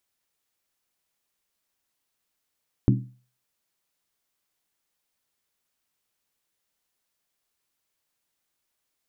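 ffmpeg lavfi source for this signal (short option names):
-f lavfi -i "aevalsrc='0.2*pow(10,-3*t/0.4)*sin(2*PI*125*t)+0.141*pow(10,-3*t/0.317)*sin(2*PI*199.2*t)+0.1*pow(10,-3*t/0.274)*sin(2*PI*267*t)+0.0708*pow(10,-3*t/0.264)*sin(2*PI*287*t)+0.0501*pow(10,-3*t/0.246)*sin(2*PI*331.6*t)':d=0.63:s=44100"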